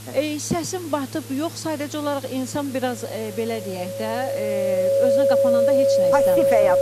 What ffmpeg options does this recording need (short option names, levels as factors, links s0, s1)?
-af "adeclick=t=4,bandreject=f=108.2:t=h:w=4,bandreject=f=216.4:t=h:w=4,bandreject=f=324.6:t=h:w=4,bandreject=f=550:w=30,afwtdn=0.0089"